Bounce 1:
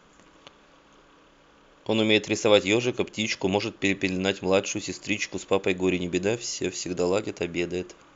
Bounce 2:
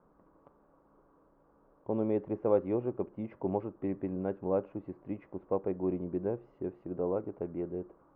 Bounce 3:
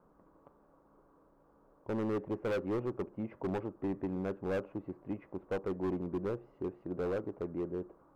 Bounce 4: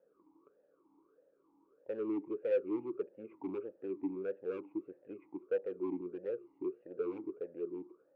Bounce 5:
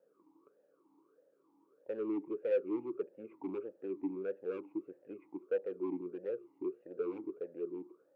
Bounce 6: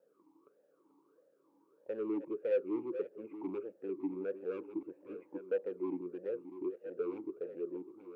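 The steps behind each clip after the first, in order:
low-pass 1.1 kHz 24 dB/octave; trim -7.5 dB
overload inside the chain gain 30 dB
talking filter e-u 1.6 Hz; trim +5 dB
high-pass 110 Hz
chunks repeated in reverse 690 ms, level -11.5 dB

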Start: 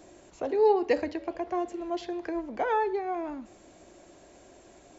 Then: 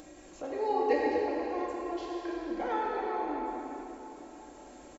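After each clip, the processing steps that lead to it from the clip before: comb 3.7 ms, depth 45%; plate-style reverb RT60 3.6 s, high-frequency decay 0.85×, DRR -5 dB; upward compressor, threshold -35 dBFS; trim -8.5 dB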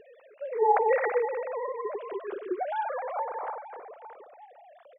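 formants replaced by sine waves; trim +3 dB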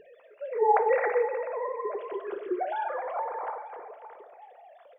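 two-slope reverb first 0.59 s, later 2.5 s, from -15 dB, DRR 8.5 dB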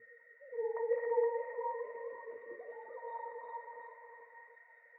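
band noise 1.4–2.1 kHz -44 dBFS; ever faster or slower copies 513 ms, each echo +1 st, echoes 3, each echo -6 dB; pitch-class resonator A#, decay 0.15 s; trim -1.5 dB

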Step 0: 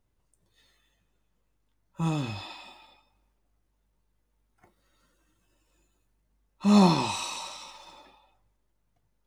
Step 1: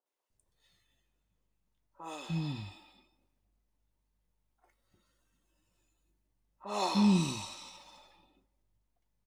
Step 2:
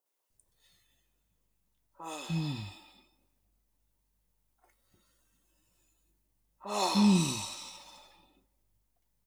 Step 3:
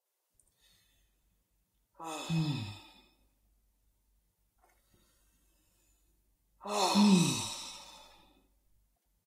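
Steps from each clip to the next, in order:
three bands offset in time mids, highs, lows 60/300 ms, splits 390/1400 Hz; trim -5.5 dB
treble shelf 7.3 kHz +10.5 dB; trim +1.5 dB
on a send: delay 80 ms -8.5 dB; on the sum: Vorbis 48 kbps 48 kHz

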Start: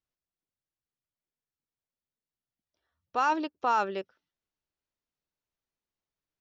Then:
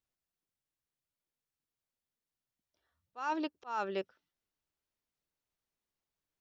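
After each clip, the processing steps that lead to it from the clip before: slow attack 385 ms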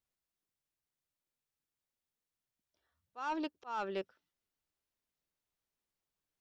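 saturation -27 dBFS, distortion -20 dB; trim -1 dB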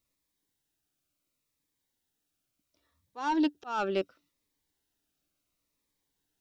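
small resonant body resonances 290/3800 Hz, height 9 dB, ringing for 85 ms; Shepard-style phaser falling 0.71 Hz; trim +9 dB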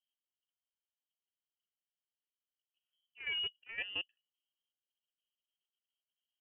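local Wiener filter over 41 samples; level held to a coarse grid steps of 10 dB; frequency inversion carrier 3.2 kHz; trim -6 dB

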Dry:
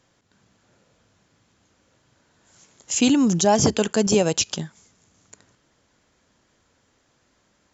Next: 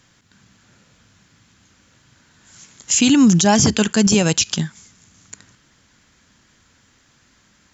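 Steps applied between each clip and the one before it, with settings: FFT filter 220 Hz 0 dB, 430 Hz -8 dB, 610 Hz -9 dB, 1.6 kHz +1 dB; loudness maximiser +13.5 dB; trim -4.5 dB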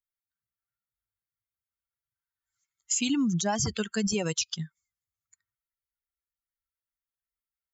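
expander on every frequency bin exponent 2; compression, threshold -19 dBFS, peak gain reduction 8.5 dB; trim -5 dB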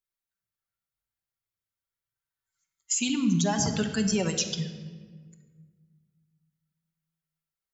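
simulated room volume 1700 m³, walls mixed, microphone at 1.1 m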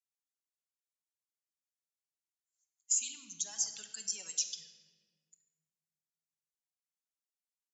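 band-pass filter 6.9 kHz, Q 1.9; trim -2 dB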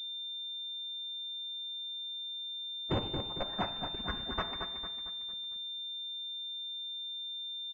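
on a send: feedback delay 226 ms, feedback 45%, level -7.5 dB; on the sum: class-D stage that switches slowly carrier 3.6 kHz; trim +1.5 dB

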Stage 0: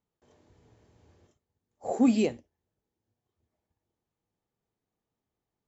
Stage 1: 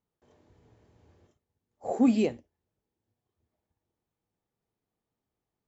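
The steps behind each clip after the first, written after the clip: treble shelf 4.5 kHz -6.5 dB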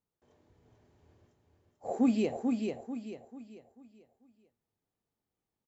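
feedback delay 441 ms, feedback 37%, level -4.5 dB; trim -4 dB

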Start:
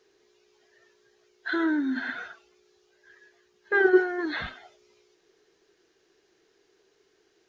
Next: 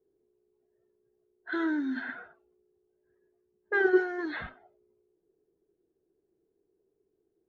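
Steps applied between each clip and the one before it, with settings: level-controlled noise filter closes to 350 Hz, open at -21.5 dBFS; trim -4 dB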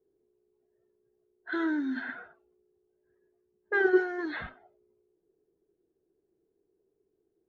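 no audible change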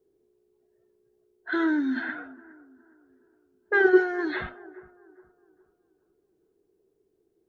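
bucket-brigade echo 413 ms, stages 4096, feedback 37%, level -20 dB; trim +5 dB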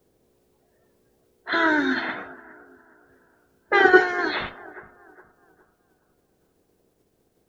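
spectral peaks clipped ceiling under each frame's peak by 18 dB; trim +4 dB

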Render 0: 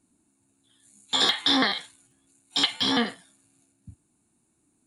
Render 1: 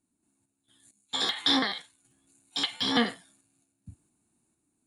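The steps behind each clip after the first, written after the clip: random-step tremolo 4.4 Hz, depth 80%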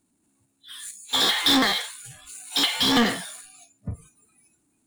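power-law waveshaper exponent 0.5; spectral noise reduction 25 dB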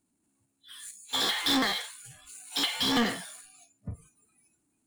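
band-stop 3.7 kHz, Q 22; trim -6 dB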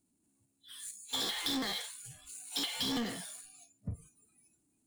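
peaking EQ 1.4 kHz -7 dB 2.3 oct; compression 6:1, threshold -32 dBFS, peak gain reduction 8.5 dB

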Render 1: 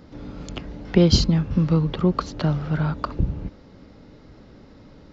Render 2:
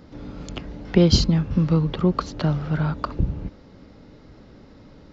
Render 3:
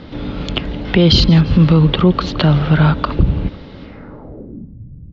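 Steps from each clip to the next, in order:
no audible change
low-pass sweep 3.4 kHz -> 120 Hz, 3.83–4.78 s; feedback delay 168 ms, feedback 39%, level -23 dB; loudness maximiser +13 dB; trim -1 dB

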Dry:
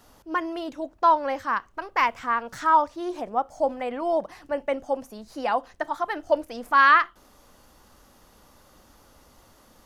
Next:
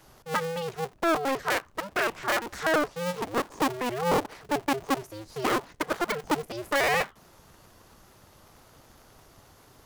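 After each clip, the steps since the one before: cycle switcher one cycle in 2, inverted; peak limiter -16.5 dBFS, peak gain reduction 10.5 dB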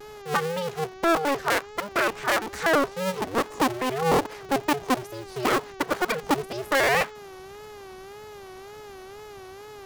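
mains buzz 400 Hz, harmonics 18, -46 dBFS -7 dB/octave; wow and flutter 110 cents; trim +3 dB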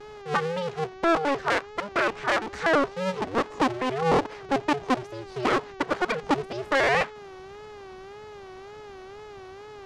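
distance through air 98 m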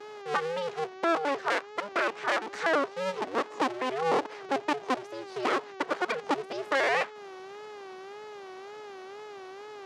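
high-pass 300 Hz 12 dB/octave; in parallel at -0.5 dB: compression, threshold -32 dBFS, peak gain reduction 13.5 dB; on the sum: trim -5.5 dB

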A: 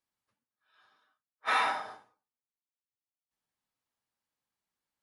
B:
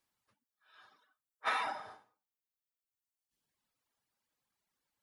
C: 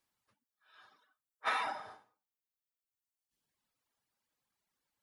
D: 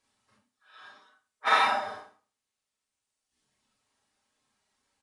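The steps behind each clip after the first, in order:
reverb removal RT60 1.5 s; compression 8:1, threshold -37 dBFS, peak gain reduction 13 dB; trim +6 dB
no audible change
comb of notches 170 Hz; resampled via 22.05 kHz; Schroeder reverb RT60 0.32 s, combs from 29 ms, DRR -3 dB; trim +7.5 dB

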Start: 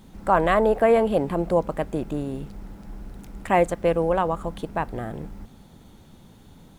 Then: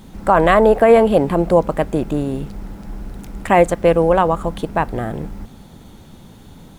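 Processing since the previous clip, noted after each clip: loudness maximiser +9 dB; trim -1 dB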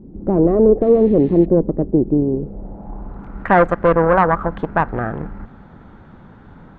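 painted sound noise, 0.81–1.46 s, 1.7–4.5 kHz -19 dBFS; valve stage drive 11 dB, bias 0.7; low-pass sweep 360 Hz -> 1.5 kHz, 2.18–3.42 s; trim +3 dB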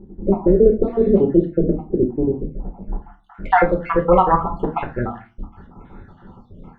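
random holes in the spectrogram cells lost 62%; reverberation RT60 0.35 s, pre-delay 5 ms, DRR 2.5 dB; trim -1.5 dB

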